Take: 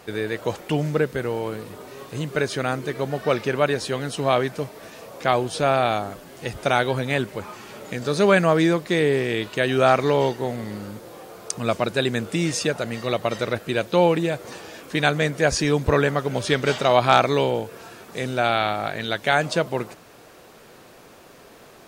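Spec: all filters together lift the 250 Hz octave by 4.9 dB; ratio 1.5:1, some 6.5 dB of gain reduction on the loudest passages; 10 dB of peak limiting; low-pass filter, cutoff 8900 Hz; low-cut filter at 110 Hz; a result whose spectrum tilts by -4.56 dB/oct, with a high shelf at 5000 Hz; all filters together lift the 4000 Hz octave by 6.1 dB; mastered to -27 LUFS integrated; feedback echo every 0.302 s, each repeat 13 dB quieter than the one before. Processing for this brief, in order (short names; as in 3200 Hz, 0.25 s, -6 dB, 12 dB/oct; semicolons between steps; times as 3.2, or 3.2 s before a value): HPF 110 Hz; LPF 8900 Hz; bell 250 Hz +7 dB; bell 4000 Hz +5 dB; high shelf 5000 Hz +6 dB; compressor 1.5:1, threshold -28 dBFS; limiter -15 dBFS; feedback echo 0.302 s, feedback 22%, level -13 dB; gain +0.5 dB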